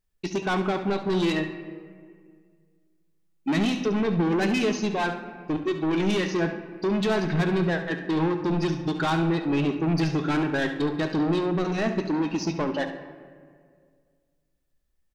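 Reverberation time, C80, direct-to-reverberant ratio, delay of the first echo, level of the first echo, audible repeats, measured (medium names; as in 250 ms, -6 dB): 2.0 s, 10.5 dB, 6.5 dB, 70 ms, -12.0 dB, 1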